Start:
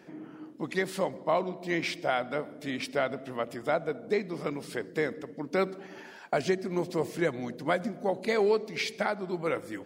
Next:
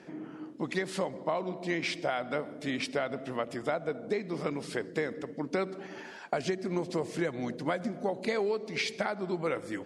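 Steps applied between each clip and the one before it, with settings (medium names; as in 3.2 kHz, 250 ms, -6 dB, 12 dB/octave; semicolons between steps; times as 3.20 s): low-pass 10 kHz 24 dB/octave; compression, threshold -29 dBFS, peak gain reduction 8.5 dB; trim +2 dB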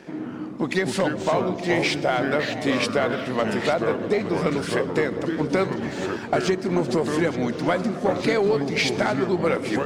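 ever faster or slower copies 90 ms, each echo -4 st, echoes 2, each echo -6 dB; waveshaping leveller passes 1; echo whose repeats swap between lows and highs 435 ms, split 1 kHz, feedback 70%, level -11.5 dB; trim +5.5 dB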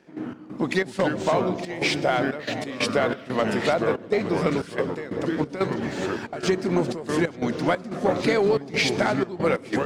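trance gate ".x.xx.xxxx.xxx" 91 bpm -12 dB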